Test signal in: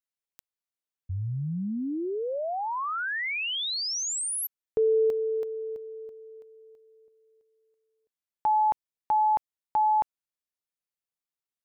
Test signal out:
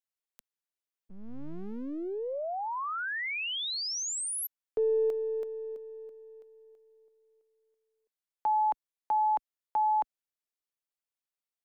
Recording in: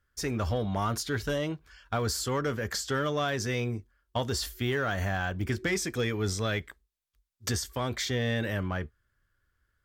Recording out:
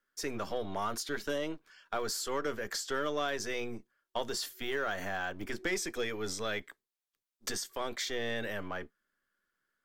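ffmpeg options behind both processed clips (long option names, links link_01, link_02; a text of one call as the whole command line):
ffmpeg -i in.wav -filter_complex "[0:a]highpass=frequency=120:width=0.5412,highpass=frequency=120:width=1.3066,acrossover=split=220|4600[link_01][link_02][link_03];[link_01]aeval=exprs='abs(val(0))':channel_layout=same[link_04];[link_04][link_02][link_03]amix=inputs=3:normalize=0,volume=-3.5dB" out.wav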